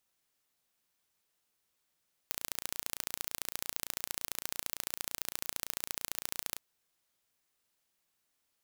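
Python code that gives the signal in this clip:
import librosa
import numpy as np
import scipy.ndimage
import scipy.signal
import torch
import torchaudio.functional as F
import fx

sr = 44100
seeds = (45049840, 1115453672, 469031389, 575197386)

y = fx.impulse_train(sr, length_s=4.29, per_s=28.9, accent_every=2, level_db=-6.5)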